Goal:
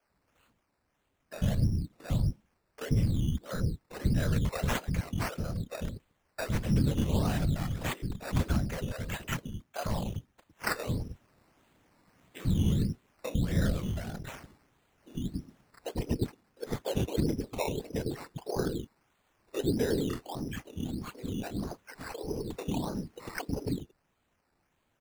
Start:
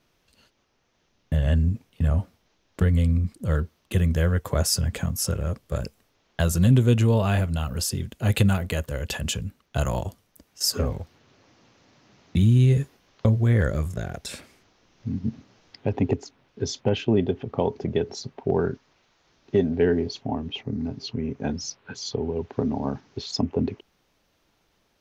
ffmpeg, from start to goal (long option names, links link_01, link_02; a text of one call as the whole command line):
ffmpeg -i in.wav -filter_complex "[0:a]afftfilt=real='hypot(re,im)*cos(2*PI*random(0))':imag='hypot(re,im)*sin(2*PI*random(1))':win_size=512:overlap=0.75,acrossover=split=420|4000[link_01][link_02][link_03];[link_03]adelay=30[link_04];[link_01]adelay=100[link_05];[link_05][link_02][link_04]amix=inputs=3:normalize=0,alimiter=limit=-17dB:level=0:latency=1:release=277,acrusher=samples=11:mix=1:aa=0.000001:lfo=1:lforange=6.6:lforate=1.6" out.wav